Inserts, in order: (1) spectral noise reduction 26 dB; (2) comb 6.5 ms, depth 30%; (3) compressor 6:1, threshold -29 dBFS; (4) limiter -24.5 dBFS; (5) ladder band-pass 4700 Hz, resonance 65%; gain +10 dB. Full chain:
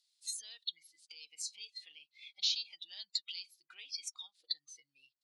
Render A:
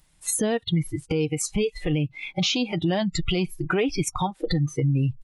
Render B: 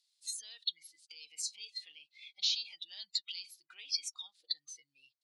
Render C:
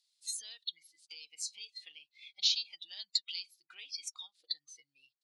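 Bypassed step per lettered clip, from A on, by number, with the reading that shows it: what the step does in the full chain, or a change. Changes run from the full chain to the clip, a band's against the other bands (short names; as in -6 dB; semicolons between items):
5, crest factor change -13.5 dB; 3, mean gain reduction 7.5 dB; 4, crest factor change +3.0 dB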